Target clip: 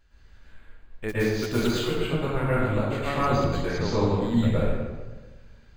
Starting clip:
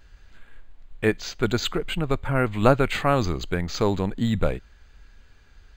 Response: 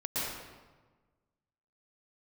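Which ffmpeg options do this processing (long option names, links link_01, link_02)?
-filter_complex "[0:a]asplit=3[link_01][link_02][link_03];[link_01]afade=type=out:start_time=1.08:duration=0.02[link_04];[link_02]acrusher=bits=3:mode=log:mix=0:aa=0.000001,afade=type=in:start_time=1.08:duration=0.02,afade=type=out:start_time=1.76:duration=0.02[link_05];[link_03]afade=type=in:start_time=1.76:duration=0.02[link_06];[link_04][link_05][link_06]amix=inputs=3:normalize=0,asettb=1/sr,asplit=3[link_07][link_08][link_09];[link_07]atrim=end=2.504[link_10];[link_08]atrim=start=2.5:end=3.07,asetpts=PTS-STARTPTS,afade=type=in:duration=0.004:curve=qsin,afade=type=out:start_time=0.566:duration=0.004:curve=qsin,acompressor=threshold=-24dB:ratio=6[link_11];[link_09]atrim=start=3.066[link_12];[link_10][link_11]acrossfade=duration=0.004:curve1=hsin:curve2=qsin[link_13];[link_13][link_12]acrossfade=duration=0.004:curve1=qsin:curve2=hsin,asettb=1/sr,asplit=3[link_14][link_15][link_16];[link_14]atrim=end=3.664[link_17];[link_15]atrim=start=3.66:end=4.16,asetpts=PTS-STARTPTS,afade=type=in:duration=0.004:curve=qsin,afade=type=out:start_time=0.496:duration=0.004:curve=qsin,lowpass=frequency=7100:width=0.5412,lowpass=frequency=7100:width=1.3066[link_18];[link_16]atrim=start=4.156[link_19];[link_17][link_18]acrossfade=duration=0.004:curve1=hsin:curve2=qsin[link_20];[link_20][link_19]acrossfade=duration=0.004:curve1=qsin:curve2=hsin[link_21];[1:a]atrim=start_sample=2205[link_22];[link_21][link_22]afir=irnorm=-1:irlink=0,volume=-7.5dB"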